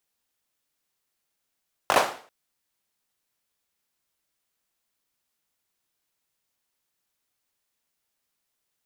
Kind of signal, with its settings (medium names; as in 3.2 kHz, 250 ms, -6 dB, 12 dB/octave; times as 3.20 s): hand clap length 0.39 s, bursts 4, apart 20 ms, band 750 Hz, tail 0.44 s